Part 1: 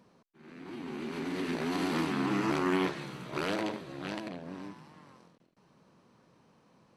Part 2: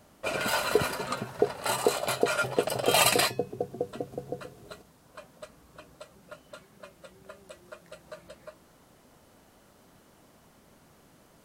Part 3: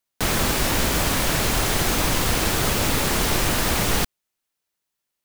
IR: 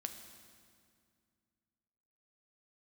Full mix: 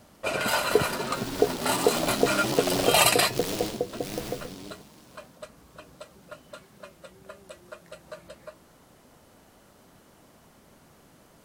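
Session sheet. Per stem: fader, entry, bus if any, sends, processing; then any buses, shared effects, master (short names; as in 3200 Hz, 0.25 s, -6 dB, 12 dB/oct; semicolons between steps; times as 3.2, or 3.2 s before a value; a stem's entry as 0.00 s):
-4.0 dB, 0.00 s, send -3.5 dB, noise-modulated delay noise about 3900 Hz, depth 0.19 ms
+2.5 dB, 0.00 s, no send, dry
-18.5 dB, 0.50 s, no send, tremolo triangle 1.4 Hz, depth 100%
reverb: on, RT60 2.2 s, pre-delay 5 ms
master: dry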